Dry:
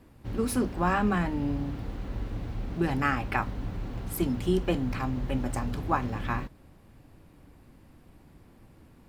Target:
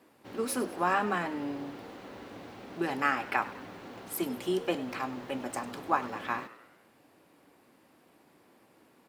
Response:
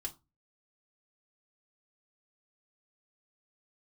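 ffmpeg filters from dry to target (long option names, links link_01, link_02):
-filter_complex "[0:a]highpass=350,asplit=6[link_01][link_02][link_03][link_04][link_05][link_06];[link_02]adelay=100,afreqshift=94,volume=-17dB[link_07];[link_03]adelay=200,afreqshift=188,volume=-22.4dB[link_08];[link_04]adelay=300,afreqshift=282,volume=-27.7dB[link_09];[link_05]adelay=400,afreqshift=376,volume=-33.1dB[link_10];[link_06]adelay=500,afreqshift=470,volume=-38.4dB[link_11];[link_01][link_07][link_08][link_09][link_10][link_11]amix=inputs=6:normalize=0"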